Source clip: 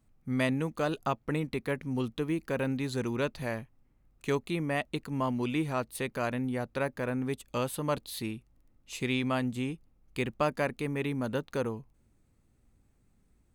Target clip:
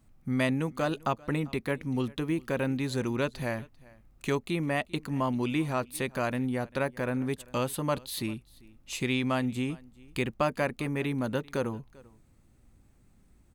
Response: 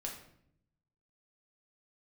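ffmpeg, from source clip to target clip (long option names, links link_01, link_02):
-filter_complex "[0:a]asplit=2[link_01][link_02];[link_02]acompressor=threshold=-42dB:ratio=6,volume=0.5dB[link_03];[link_01][link_03]amix=inputs=2:normalize=0,bandreject=frequency=450:width=12,aecho=1:1:394:0.0668"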